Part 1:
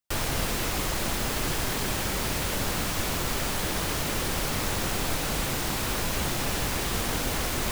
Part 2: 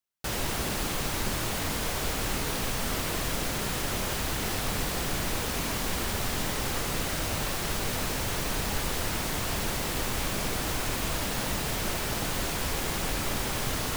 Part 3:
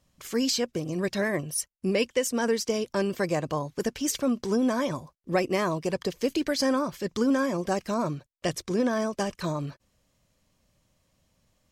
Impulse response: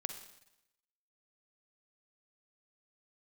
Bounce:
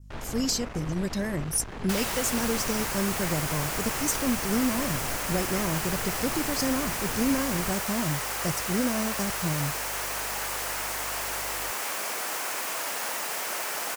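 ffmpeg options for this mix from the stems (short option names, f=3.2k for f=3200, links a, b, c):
-filter_complex "[0:a]adynamicsmooth=sensitivity=0.5:basefreq=2.4k,aeval=exprs='clip(val(0),-1,0.0188)':c=same,volume=-5.5dB[a];[1:a]highpass=650,adelay=1650,volume=2.5dB[b];[2:a]aeval=exprs='val(0)+0.00282*(sin(2*PI*50*n/s)+sin(2*PI*2*50*n/s)/2+sin(2*PI*3*50*n/s)/3+sin(2*PI*4*50*n/s)/4+sin(2*PI*5*50*n/s)/5)':c=same,bass=f=250:g=13,treble=f=4k:g=11,volume=-7.5dB[c];[a][b][c]amix=inputs=3:normalize=0,adynamicequalizer=threshold=0.00398:dfrequency=3700:dqfactor=1.9:tfrequency=3700:tqfactor=1.9:attack=5:release=100:ratio=0.375:range=3.5:mode=cutabove:tftype=bell"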